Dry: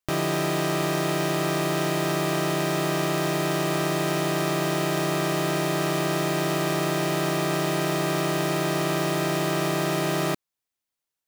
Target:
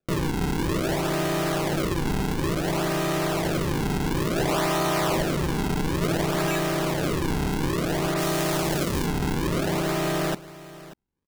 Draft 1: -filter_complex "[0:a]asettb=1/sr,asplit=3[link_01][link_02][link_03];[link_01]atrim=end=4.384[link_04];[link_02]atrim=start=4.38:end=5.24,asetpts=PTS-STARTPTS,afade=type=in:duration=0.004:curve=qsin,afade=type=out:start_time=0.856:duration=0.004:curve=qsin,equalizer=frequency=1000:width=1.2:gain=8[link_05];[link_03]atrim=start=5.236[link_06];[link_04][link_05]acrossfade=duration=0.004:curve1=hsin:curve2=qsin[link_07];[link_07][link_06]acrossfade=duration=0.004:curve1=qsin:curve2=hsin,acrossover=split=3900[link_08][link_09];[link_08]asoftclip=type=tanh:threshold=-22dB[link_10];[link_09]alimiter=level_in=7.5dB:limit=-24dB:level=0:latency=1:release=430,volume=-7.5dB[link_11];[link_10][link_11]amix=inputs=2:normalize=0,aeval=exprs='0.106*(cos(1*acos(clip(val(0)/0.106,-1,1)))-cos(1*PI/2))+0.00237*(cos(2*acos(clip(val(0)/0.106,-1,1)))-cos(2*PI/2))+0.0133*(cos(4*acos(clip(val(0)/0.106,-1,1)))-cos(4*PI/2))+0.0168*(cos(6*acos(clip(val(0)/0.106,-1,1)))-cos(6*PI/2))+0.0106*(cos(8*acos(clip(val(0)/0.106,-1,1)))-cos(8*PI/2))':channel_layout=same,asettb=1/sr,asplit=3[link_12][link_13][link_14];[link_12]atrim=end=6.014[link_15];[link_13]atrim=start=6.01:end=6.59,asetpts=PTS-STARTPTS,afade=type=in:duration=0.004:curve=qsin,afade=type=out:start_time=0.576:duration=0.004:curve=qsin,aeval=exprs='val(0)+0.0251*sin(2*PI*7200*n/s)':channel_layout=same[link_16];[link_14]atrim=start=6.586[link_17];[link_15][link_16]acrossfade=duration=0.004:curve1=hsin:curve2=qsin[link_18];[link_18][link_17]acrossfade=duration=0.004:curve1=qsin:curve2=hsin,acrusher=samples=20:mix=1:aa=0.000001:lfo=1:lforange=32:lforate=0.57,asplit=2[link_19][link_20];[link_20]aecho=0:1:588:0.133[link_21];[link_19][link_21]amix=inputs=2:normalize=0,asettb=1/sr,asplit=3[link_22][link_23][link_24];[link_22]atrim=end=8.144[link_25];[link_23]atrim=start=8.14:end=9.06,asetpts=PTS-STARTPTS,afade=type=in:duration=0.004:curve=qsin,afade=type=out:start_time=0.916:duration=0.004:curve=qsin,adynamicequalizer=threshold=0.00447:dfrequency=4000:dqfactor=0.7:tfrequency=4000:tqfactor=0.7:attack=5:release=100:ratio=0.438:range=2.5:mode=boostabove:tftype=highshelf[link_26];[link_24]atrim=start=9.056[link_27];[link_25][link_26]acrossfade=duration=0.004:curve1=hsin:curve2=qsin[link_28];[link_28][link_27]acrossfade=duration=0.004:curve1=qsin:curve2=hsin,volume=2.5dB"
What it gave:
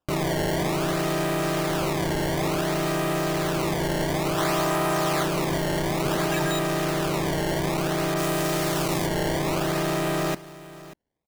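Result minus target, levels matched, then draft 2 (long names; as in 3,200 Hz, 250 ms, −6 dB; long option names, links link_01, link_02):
sample-and-hold swept by an LFO: distortion −6 dB
-filter_complex "[0:a]asettb=1/sr,asplit=3[link_01][link_02][link_03];[link_01]atrim=end=4.384[link_04];[link_02]atrim=start=4.38:end=5.24,asetpts=PTS-STARTPTS,afade=type=in:duration=0.004:curve=qsin,afade=type=out:start_time=0.856:duration=0.004:curve=qsin,equalizer=frequency=1000:width=1.2:gain=8[link_05];[link_03]atrim=start=5.236[link_06];[link_04][link_05]acrossfade=duration=0.004:curve1=hsin:curve2=qsin[link_07];[link_07][link_06]acrossfade=duration=0.004:curve1=qsin:curve2=hsin,acrossover=split=3900[link_08][link_09];[link_08]asoftclip=type=tanh:threshold=-22dB[link_10];[link_09]alimiter=level_in=7.5dB:limit=-24dB:level=0:latency=1:release=430,volume=-7.5dB[link_11];[link_10][link_11]amix=inputs=2:normalize=0,aeval=exprs='0.106*(cos(1*acos(clip(val(0)/0.106,-1,1)))-cos(1*PI/2))+0.00237*(cos(2*acos(clip(val(0)/0.106,-1,1)))-cos(2*PI/2))+0.0133*(cos(4*acos(clip(val(0)/0.106,-1,1)))-cos(4*PI/2))+0.0168*(cos(6*acos(clip(val(0)/0.106,-1,1)))-cos(6*PI/2))+0.0106*(cos(8*acos(clip(val(0)/0.106,-1,1)))-cos(8*PI/2))':channel_layout=same,asettb=1/sr,asplit=3[link_12][link_13][link_14];[link_12]atrim=end=6.014[link_15];[link_13]atrim=start=6.01:end=6.59,asetpts=PTS-STARTPTS,afade=type=in:duration=0.004:curve=qsin,afade=type=out:start_time=0.576:duration=0.004:curve=qsin,aeval=exprs='val(0)+0.0251*sin(2*PI*7200*n/s)':channel_layout=same[link_16];[link_14]atrim=start=6.586[link_17];[link_15][link_16]acrossfade=duration=0.004:curve1=hsin:curve2=qsin[link_18];[link_18][link_17]acrossfade=duration=0.004:curve1=qsin:curve2=hsin,acrusher=samples=42:mix=1:aa=0.000001:lfo=1:lforange=67.2:lforate=0.57,asplit=2[link_19][link_20];[link_20]aecho=0:1:588:0.133[link_21];[link_19][link_21]amix=inputs=2:normalize=0,asettb=1/sr,asplit=3[link_22][link_23][link_24];[link_22]atrim=end=8.144[link_25];[link_23]atrim=start=8.14:end=9.06,asetpts=PTS-STARTPTS,afade=type=in:duration=0.004:curve=qsin,afade=type=out:start_time=0.916:duration=0.004:curve=qsin,adynamicequalizer=threshold=0.00447:dfrequency=4000:dqfactor=0.7:tfrequency=4000:tqfactor=0.7:attack=5:release=100:ratio=0.438:range=2.5:mode=boostabove:tftype=highshelf[link_26];[link_24]atrim=start=9.056[link_27];[link_25][link_26]acrossfade=duration=0.004:curve1=hsin:curve2=qsin[link_28];[link_28][link_27]acrossfade=duration=0.004:curve1=qsin:curve2=hsin,volume=2.5dB"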